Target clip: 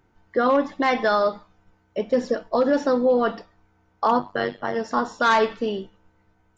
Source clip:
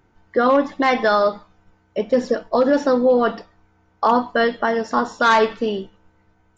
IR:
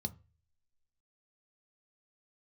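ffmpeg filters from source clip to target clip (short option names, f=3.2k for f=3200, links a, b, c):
-filter_complex "[0:a]asplit=3[a][b][c];[a]afade=t=out:st=4.18:d=0.02[d];[b]tremolo=f=98:d=0.919,afade=t=in:st=4.18:d=0.02,afade=t=out:st=4.74:d=0.02[e];[c]afade=t=in:st=4.74:d=0.02[f];[d][e][f]amix=inputs=3:normalize=0,volume=-3.5dB"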